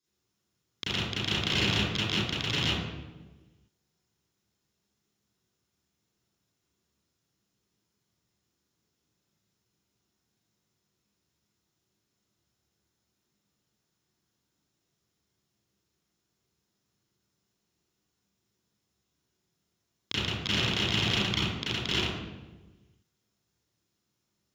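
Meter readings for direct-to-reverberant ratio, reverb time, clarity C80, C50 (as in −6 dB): −12.0 dB, 1.3 s, 0.5 dB, −5.0 dB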